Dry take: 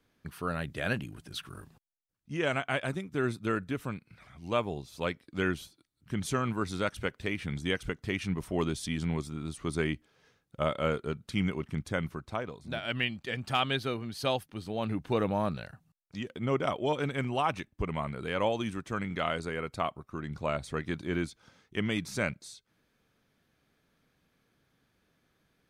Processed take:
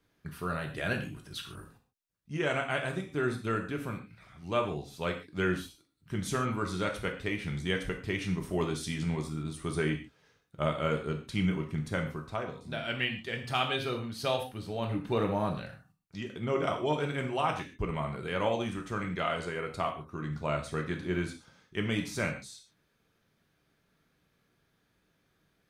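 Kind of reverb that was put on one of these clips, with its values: gated-style reverb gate 170 ms falling, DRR 2.5 dB; trim -2 dB

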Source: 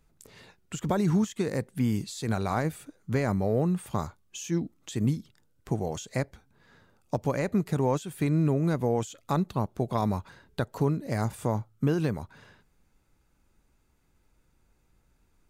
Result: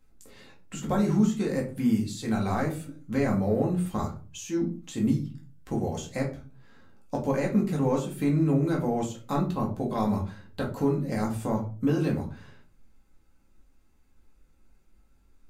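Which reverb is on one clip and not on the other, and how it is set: simulated room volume 200 m³, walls furnished, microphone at 2.1 m; trim -4 dB

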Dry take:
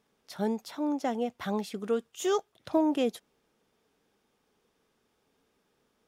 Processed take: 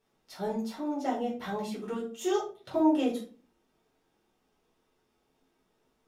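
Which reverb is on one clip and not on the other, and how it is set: simulated room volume 220 m³, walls furnished, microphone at 4.4 m; trim -9.5 dB

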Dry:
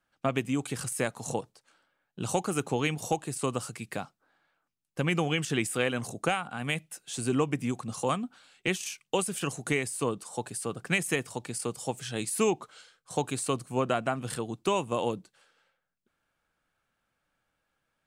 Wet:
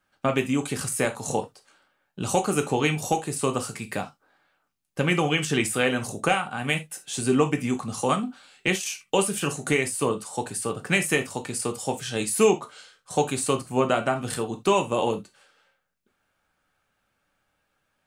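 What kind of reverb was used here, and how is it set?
gated-style reverb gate 100 ms falling, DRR 4.5 dB; trim +4.5 dB

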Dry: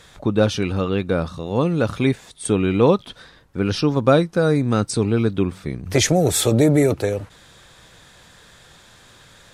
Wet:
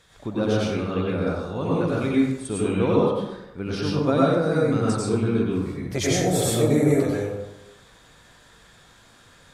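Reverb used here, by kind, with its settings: plate-style reverb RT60 0.95 s, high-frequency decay 0.5×, pre-delay 80 ms, DRR -6 dB; trim -10.5 dB

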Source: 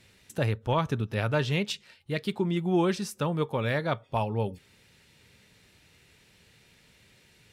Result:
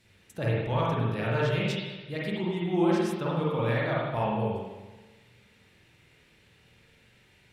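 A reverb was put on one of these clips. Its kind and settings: spring tank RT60 1.2 s, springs 42/51 ms, chirp 60 ms, DRR -6 dB; trim -6.5 dB

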